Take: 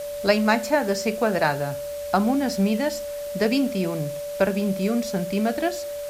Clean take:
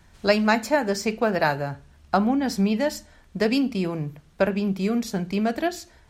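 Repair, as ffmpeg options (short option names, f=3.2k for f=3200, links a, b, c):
-af "adeclick=t=4,bandreject=f=580:w=30,afwtdn=0.0071"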